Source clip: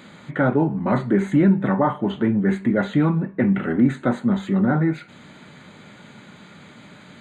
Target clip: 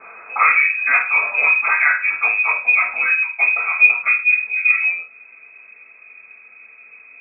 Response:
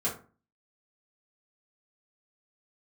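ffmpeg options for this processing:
-filter_complex "[0:a]asetnsamples=nb_out_samples=441:pad=0,asendcmd='2.51 equalizer g 4.5;4.08 equalizer g -10',equalizer=frequency=1600:width_type=o:width=1.6:gain=11[link_01];[1:a]atrim=start_sample=2205,afade=type=out:start_time=0.21:duration=0.01,atrim=end_sample=9702[link_02];[link_01][link_02]afir=irnorm=-1:irlink=0,lowpass=frequency=2300:width_type=q:width=0.5098,lowpass=frequency=2300:width_type=q:width=0.6013,lowpass=frequency=2300:width_type=q:width=0.9,lowpass=frequency=2300:width_type=q:width=2.563,afreqshift=-2700,volume=-6.5dB"

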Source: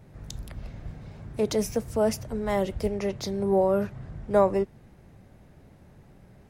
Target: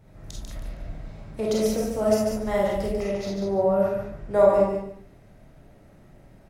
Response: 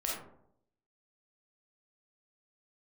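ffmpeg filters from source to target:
-filter_complex "[0:a]asettb=1/sr,asplit=3[link_01][link_02][link_03];[link_01]atrim=end=3.114[link_04];[link_02]atrim=start=3.11:end=3.8,asetpts=PTS-STARTPTS,afade=type=in:duration=0.004:curve=qsin,afade=type=out:start_time=0.686:duration=0.004:curve=qsin,highshelf=frequency=4200:gain=-8.5[link_05];[link_03]atrim=start=3.796[link_06];[link_04][link_05]acrossfade=duration=0.004:curve1=hsin:curve2=qsin[link_07];[link_07][link_06]acrossfade=duration=0.004:curve1=qsin:curve2=hsin,aecho=1:1:144|288|432:0.562|0.129|0.0297[link_08];[1:a]atrim=start_sample=2205,afade=type=out:start_time=0.17:duration=0.01,atrim=end_sample=7938[link_09];[link_08][link_09]afir=irnorm=-1:irlink=0,volume=-2.5dB"

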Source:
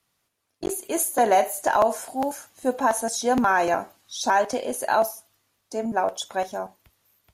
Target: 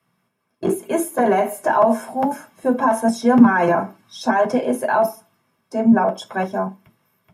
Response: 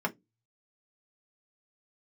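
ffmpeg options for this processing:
-filter_complex "[0:a]alimiter=limit=-15.5dB:level=0:latency=1:release=20,lowshelf=frequency=190:gain=9[link_01];[1:a]atrim=start_sample=2205[link_02];[link_01][link_02]afir=irnorm=-1:irlink=0,volume=-2dB"

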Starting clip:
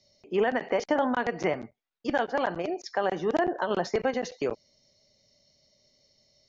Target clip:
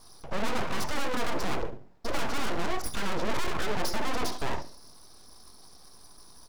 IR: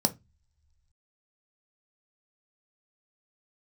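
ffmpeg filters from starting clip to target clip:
-filter_complex "[1:a]atrim=start_sample=2205,asetrate=41013,aresample=44100[link_01];[0:a][link_01]afir=irnorm=-1:irlink=0,alimiter=limit=-6.5dB:level=0:latency=1,asoftclip=type=tanh:threshold=-24.5dB,highpass=60,bandreject=frequency=50:width_type=h:width=6,bandreject=frequency=100:width_type=h:width=6,bandreject=frequency=150:width_type=h:width=6,bandreject=frequency=200:width_type=h:width=6,bandreject=frequency=250:width_type=h:width=6,bandreject=frequency=300:width_type=h:width=6,bandreject=frequency=350:width_type=h:width=6,aeval=exprs='abs(val(0))':channel_layout=same,aecho=1:1:70|140|210:0.141|0.048|0.0163,volume=1.5dB"

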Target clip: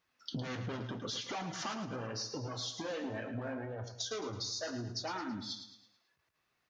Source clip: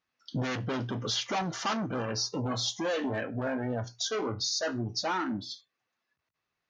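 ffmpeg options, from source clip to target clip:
ffmpeg -i in.wav -af "acompressor=threshold=-41dB:ratio=16,flanger=delay=1.9:depth=9:regen=-61:speed=0.81:shape=sinusoidal,aecho=1:1:109|218|327|436|545:0.335|0.141|0.0591|0.0248|0.0104,volume=8.5dB" out.wav

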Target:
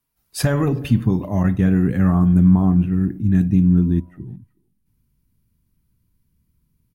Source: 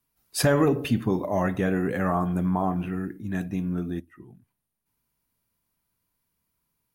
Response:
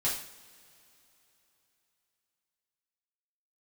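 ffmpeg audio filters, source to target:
-filter_complex "[0:a]asettb=1/sr,asplit=3[link_01][link_02][link_03];[link_01]atrim=end=1.434[link_04];[link_02]atrim=start=1.43:end=3.01,asetpts=PTS-STARTPTS,afade=type=in:duration=0.004:curve=qsin,afade=type=out:start_time=1.576:duration=0.004:curve=qsin,agate=range=-33dB:threshold=-26dB:ratio=3:detection=peak[link_05];[link_03]atrim=start=3.006[link_06];[link_04][link_05]acrossfade=duration=0.004:curve1=hsin:curve2=qsin[link_07];[link_07][link_06]acrossfade=duration=0.004:curve1=qsin:curve2=hsin,asettb=1/sr,asplit=3[link_08][link_09][link_10];[link_08]atrim=end=3.664[link_11];[link_09]atrim=start=3.66:end=4.11,asetpts=PTS-STARTPTS,afade=type=in:duration=0.004:curve=qsin,afade=type=out:start_time=0.446:duration=0.004:curve=qsin,aeval=exprs='val(0)+0.00158*sin(2*PI*980*n/s)':channel_layout=same[link_12];[link_10]atrim=start=4.106[link_13];[link_11][link_12]acrossfade=duration=0.004:curve1=hsin:curve2=qsin[link_14];[link_14][link_13]acrossfade=duration=0.004:curve1=qsin:curve2=hsin,asubboost=boost=12:cutoff=210,asplit=2[link_15][link_16];[link_16]adelay=370,highpass=300,lowpass=3400,asoftclip=type=hard:threshold=-21.5dB,volume=-25dB[link_17];[link_15][link_17]amix=inputs=2:normalize=0"

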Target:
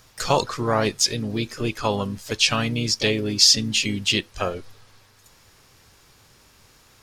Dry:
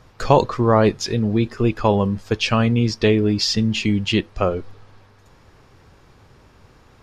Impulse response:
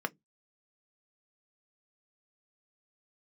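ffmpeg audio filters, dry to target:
-filter_complex "[0:a]crystalizer=i=7.5:c=0,asplit=2[link_01][link_02];[link_02]asetrate=55563,aresample=44100,atempo=0.793701,volume=-10dB[link_03];[link_01][link_03]amix=inputs=2:normalize=0,volume=-8.5dB"

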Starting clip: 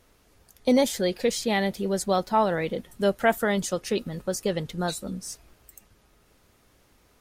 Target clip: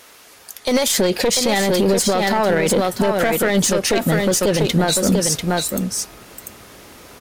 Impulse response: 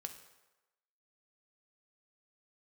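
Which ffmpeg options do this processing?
-af "asetnsamples=nb_out_samples=441:pad=0,asendcmd='0.98 highpass f 160',highpass=frequency=1100:poles=1,acompressor=threshold=-28dB:ratio=3,aeval=exprs='clip(val(0),-1,0.0282)':channel_layout=same,aecho=1:1:693:0.473,alimiter=level_in=27.5dB:limit=-1dB:release=50:level=0:latency=1,volume=-7dB"

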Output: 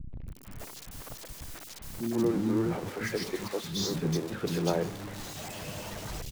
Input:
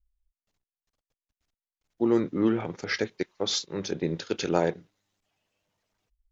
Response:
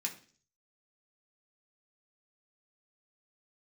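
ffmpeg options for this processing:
-filter_complex "[0:a]aeval=exprs='val(0)+0.5*0.0473*sgn(val(0))':channel_layout=same,equalizer=frequency=160:width_type=o:width=2.6:gain=7.5,acrossover=split=270|2700[link_01][link_02][link_03];[link_02]adelay=130[link_04];[link_03]adelay=280[link_05];[link_01][link_04][link_05]amix=inputs=3:normalize=0,volume=-8dB"

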